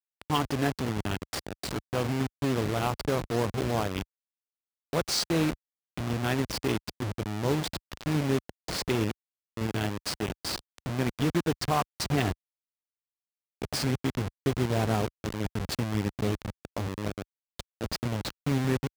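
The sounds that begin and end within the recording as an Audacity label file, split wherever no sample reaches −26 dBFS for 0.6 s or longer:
4.930000	12.320000	sound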